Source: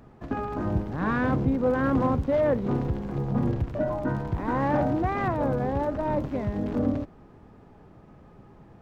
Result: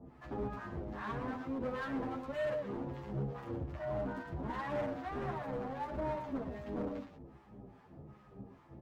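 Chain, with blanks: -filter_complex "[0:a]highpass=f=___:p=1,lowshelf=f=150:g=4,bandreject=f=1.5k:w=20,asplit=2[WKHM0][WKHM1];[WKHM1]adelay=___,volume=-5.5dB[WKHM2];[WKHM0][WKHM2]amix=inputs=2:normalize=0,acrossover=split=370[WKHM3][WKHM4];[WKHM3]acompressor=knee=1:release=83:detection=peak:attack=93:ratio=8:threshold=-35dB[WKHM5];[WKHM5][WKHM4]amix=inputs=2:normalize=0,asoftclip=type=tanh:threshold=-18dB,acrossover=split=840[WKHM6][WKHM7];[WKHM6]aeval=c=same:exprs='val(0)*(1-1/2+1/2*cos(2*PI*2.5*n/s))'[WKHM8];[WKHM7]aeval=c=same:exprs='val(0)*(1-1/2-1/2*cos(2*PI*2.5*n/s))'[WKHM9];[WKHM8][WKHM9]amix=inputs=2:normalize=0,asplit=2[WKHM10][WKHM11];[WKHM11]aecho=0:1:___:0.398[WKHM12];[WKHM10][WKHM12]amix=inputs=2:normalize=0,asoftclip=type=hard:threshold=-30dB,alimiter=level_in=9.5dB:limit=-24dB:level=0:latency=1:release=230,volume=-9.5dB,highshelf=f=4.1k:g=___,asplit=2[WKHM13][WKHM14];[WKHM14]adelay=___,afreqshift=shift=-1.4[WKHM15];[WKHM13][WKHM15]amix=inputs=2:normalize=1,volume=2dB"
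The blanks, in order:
77, 15, 115, -4.5, 8.6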